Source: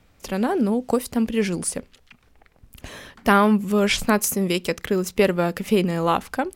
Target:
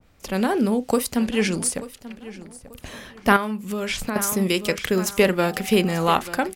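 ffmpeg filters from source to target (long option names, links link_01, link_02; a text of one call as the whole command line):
ffmpeg -i in.wav -filter_complex "[0:a]asettb=1/sr,asplit=3[link_01][link_02][link_03];[link_01]atrim=end=5.434[link_04];[link_02]atrim=start=5.43:end=6.11,asetpts=PTS-STARTPTS,afade=type=in:duration=0.004:curve=qsin,afade=type=out:start_time=0.676:duration=0.004:curve=qsin,aeval=exprs='val(0)+0.01*sin(2*PI*760*n/s)':channel_layout=same[link_05];[link_03]atrim=start=6.106[link_06];[link_04][link_05]acrossfade=duration=0.004:curve1=hsin:curve2=qsin[link_07];[link_07][link_06]acrossfade=duration=0.004:curve1=qsin:curve2=hsin,acrossover=split=1800[link_08][link_09];[link_08]asplit=2[link_10][link_11];[link_11]adelay=37,volume=-12dB[link_12];[link_10][link_12]amix=inputs=2:normalize=0[link_13];[link_09]alimiter=limit=-18.5dB:level=0:latency=1:release=175[link_14];[link_13][link_14]amix=inputs=2:normalize=0,asettb=1/sr,asplit=3[link_15][link_16][link_17];[link_15]atrim=end=1.164[link_18];[link_16]atrim=start=1.16:end=1.58,asetpts=PTS-STARTPTS,afade=type=in:duration=0.004:curve=qsin,afade=type=out:start_time=0.416:duration=0.004:curve=qsin,lowpass=frequency=11000:width=0.5412,lowpass=frequency=11000:width=1.3066[link_19];[link_17]atrim=start=1.576[link_20];[link_18][link_19]acrossfade=duration=0.004:curve1=hsin:curve2=qsin[link_21];[link_21][link_20]acrossfade=duration=0.004:curve1=qsin:curve2=hsin,asplit=2[link_22][link_23];[link_23]aecho=0:1:887|1774|2661:0.158|0.0507|0.0162[link_24];[link_22][link_24]amix=inputs=2:normalize=0,asettb=1/sr,asplit=3[link_25][link_26][link_27];[link_25]atrim=end=3.364[link_28];[link_26]atrim=start=3.36:end=4.16,asetpts=PTS-STARTPTS,afade=type=in:duration=0.004:curve=qsin,afade=type=out:start_time=0.796:duration=0.004:curve=qsin,acompressor=threshold=-25dB:ratio=6[link_29];[link_27]atrim=start=4.156[link_30];[link_28][link_29]acrossfade=duration=0.004:curve1=hsin:curve2=qsin[link_31];[link_31][link_30]acrossfade=duration=0.004:curve1=qsin:curve2=hsin,adynamicequalizer=threshold=0.0126:dfrequency=1500:dqfactor=0.7:tfrequency=1500:tqfactor=0.7:attack=5:release=100:ratio=0.375:range=3:mode=boostabove:tftype=highshelf" out.wav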